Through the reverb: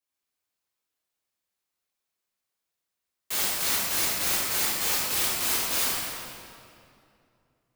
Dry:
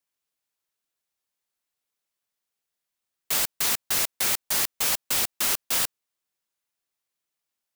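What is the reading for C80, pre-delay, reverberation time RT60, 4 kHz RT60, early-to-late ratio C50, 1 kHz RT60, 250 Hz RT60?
-1.0 dB, 3 ms, 2.6 s, 1.8 s, -3.0 dB, 2.4 s, 2.9 s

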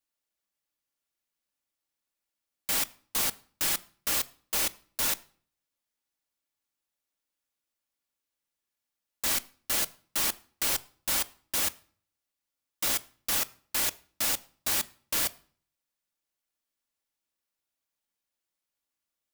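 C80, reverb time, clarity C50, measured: 25.0 dB, 0.45 s, 22.0 dB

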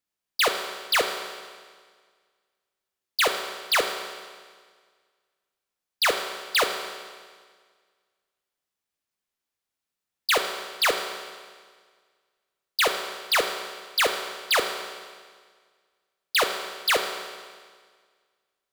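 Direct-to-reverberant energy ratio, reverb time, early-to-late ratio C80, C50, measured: 4.5 dB, 1.7 s, 8.0 dB, 6.5 dB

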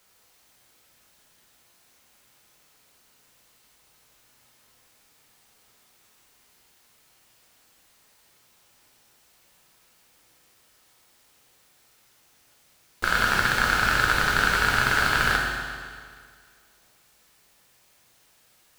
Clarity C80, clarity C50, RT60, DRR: 2.5 dB, 1.5 dB, 1.9 s, -1.5 dB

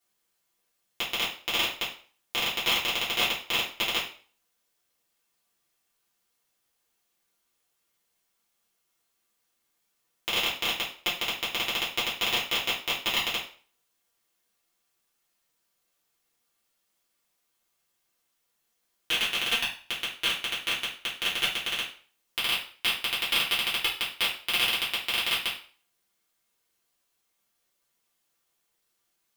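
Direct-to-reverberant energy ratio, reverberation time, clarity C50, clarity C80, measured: -9.0 dB, 0.45 s, 6.5 dB, 12.0 dB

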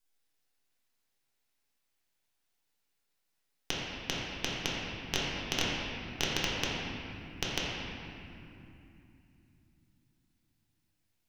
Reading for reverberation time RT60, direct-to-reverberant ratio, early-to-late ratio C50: 2.8 s, -6.5 dB, -2.5 dB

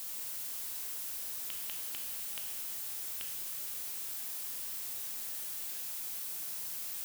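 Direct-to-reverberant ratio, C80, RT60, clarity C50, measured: 2.0 dB, 5.5 dB, 1.8 s, 4.0 dB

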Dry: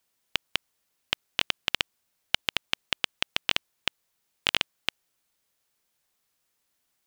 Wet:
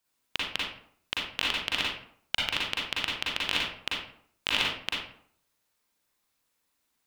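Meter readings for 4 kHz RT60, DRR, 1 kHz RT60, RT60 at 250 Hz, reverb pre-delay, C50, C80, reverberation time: 0.35 s, -5.5 dB, 0.60 s, 0.65 s, 37 ms, -0.5 dB, 5.0 dB, 0.60 s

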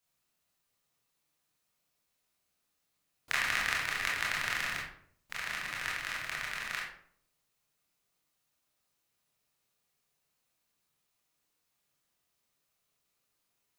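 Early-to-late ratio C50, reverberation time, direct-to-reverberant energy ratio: 2.5 dB, 0.60 s, -4.5 dB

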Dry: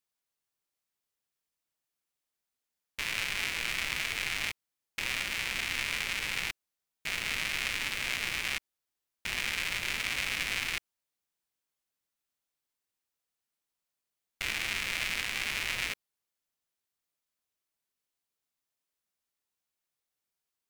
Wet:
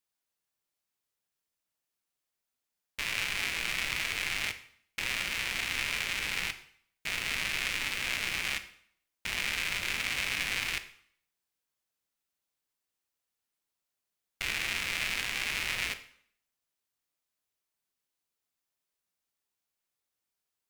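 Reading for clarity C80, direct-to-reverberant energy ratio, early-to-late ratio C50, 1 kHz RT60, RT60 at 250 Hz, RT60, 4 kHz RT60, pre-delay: 16.5 dB, 9.5 dB, 13.5 dB, 0.60 s, 0.60 s, 0.60 s, 0.55 s, 6 ms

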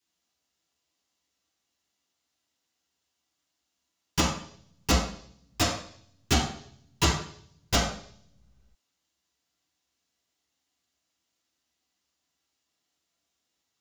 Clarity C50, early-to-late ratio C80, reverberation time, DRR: 3.5 dB, 7.5 dB, 0.60 s, -7.5 dB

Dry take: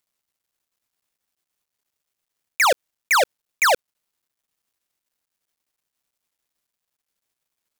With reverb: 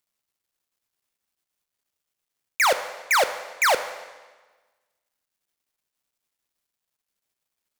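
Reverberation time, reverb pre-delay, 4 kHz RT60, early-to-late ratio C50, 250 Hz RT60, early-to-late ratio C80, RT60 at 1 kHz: 1.3 s, 10 ms, 1.2 s, 11.5 dB, 1.3 s, 13.0 dB, 1.3 s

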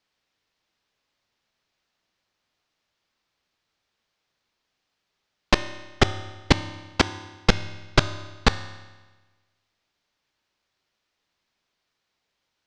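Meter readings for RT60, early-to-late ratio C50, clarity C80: 1.3 s, 13.0 dB, 14.5 dB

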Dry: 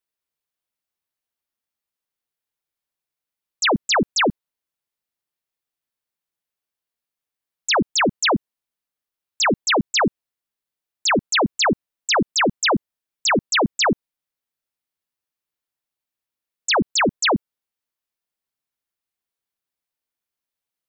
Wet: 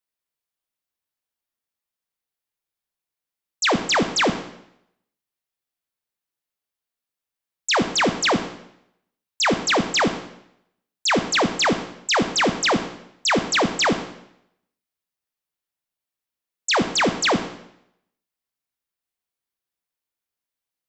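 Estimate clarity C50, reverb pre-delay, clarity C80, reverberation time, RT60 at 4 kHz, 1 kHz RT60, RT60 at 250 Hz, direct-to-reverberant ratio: 10.0 dB, 17 ms, 13.0 dB, 0.75 s, 0.75 s, 0.75 s, 0.75 s, 8.0 dB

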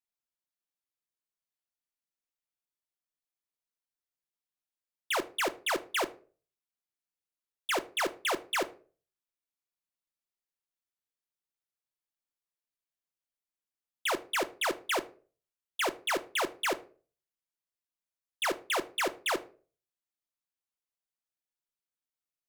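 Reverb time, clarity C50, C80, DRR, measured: 0.40 s, 18.5 dB, 23.5 dB, 10.0 dB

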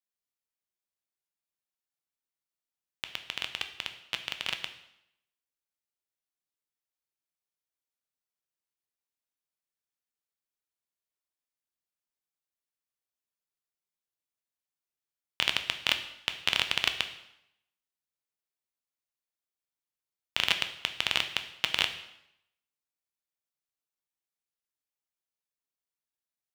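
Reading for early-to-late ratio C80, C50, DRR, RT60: 13.5 dB, 11.0 dB, 7.0 dB, 0.80 s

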